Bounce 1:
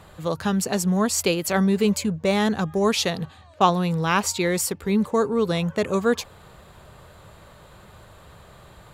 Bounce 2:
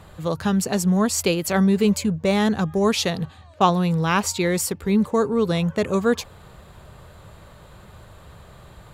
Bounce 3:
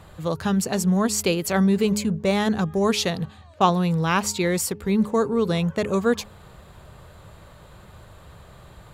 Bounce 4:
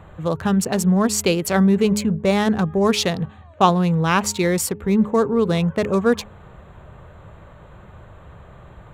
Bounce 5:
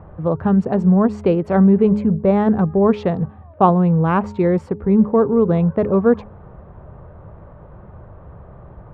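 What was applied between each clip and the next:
low shelf 200 Hz +5 dB
de-hum 208.9 Hz, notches 2; gain -1 dB
Wiener smoothing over 9 samples; gain +3.5 dB
LPF 1000 Hz 12 dB/oct; gain +3.5 dB

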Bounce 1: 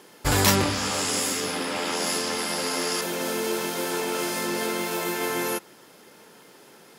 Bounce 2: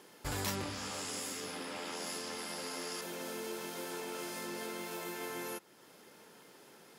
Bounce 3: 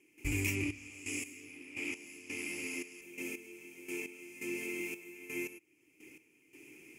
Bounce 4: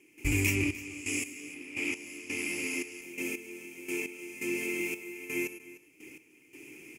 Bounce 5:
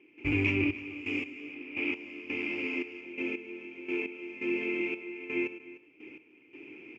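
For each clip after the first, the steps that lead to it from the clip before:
compressor 1.5:1, threshold -44 dBFS, peak gain reduction 10.5 dB; gain -7 dB
EQ curve 110 Hz 0 dB, 200 Hz -13 dB, 310 Hz +6 dB, 550 Hz -20 dB, 1600 Hz -21 dB, 2400 Hz +12 dB, 3800 Hz -24 dB, 6600 Hz -4 dB, 13000 Hz -7 dB; step gate ".xxx..x...x." 85 bpm -12 dB; gain +5.5 dB
echo 0.302 s -17.5 dB; gain +6 dB
speaker cabinet 100–2900 Hz, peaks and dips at 120 Hz -5 dB, 170 Hz -7 dB, 1900 Hz -6 dB; gain +3 dB

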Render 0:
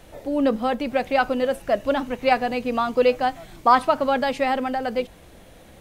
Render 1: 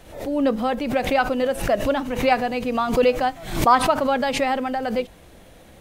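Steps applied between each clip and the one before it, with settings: backwards sustainer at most 91 dB/s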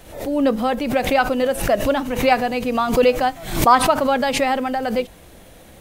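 high shelf 8400 Hz +7 dB; gain +2.5 dB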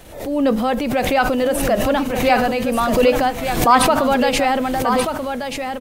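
transient shaper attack -4 dB, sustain +4 dB; on a send: echo 1.183 s -7.5 dB; on the sum: gain +1.5 dB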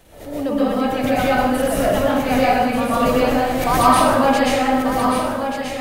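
plate-style reverb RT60 1.2 s, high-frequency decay 0.6×, pre-delay 0.11 s, DRR -8 dB; gain -9 dB

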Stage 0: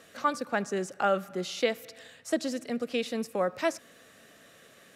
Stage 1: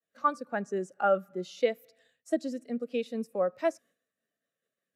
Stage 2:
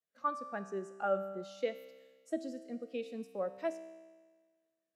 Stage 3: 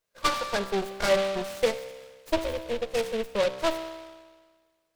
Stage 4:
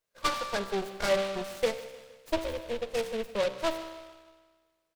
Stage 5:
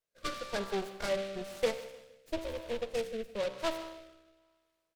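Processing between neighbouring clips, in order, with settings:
expander -48 dBFS; high shelf 9400 Hz +9.5 dB; spectral expander 1.5:1
resonator 65 Hz, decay 1.5 s, harmonics all, mix 70%; gain +1 dB
minimum comb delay 1.9 ms; in parallel at +1.5 dB: limiter -32.5 dBFS, peak gain reduction 9.5 dB; on the sum: noise-modulated delay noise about 2400 Hz, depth 0.07 ms; gain +7 dB
feedback echo 0.153 s, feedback 47%, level -19 dB; gain -3.5 dB
rotary speaker horn 1 Hz; gain -2 dB

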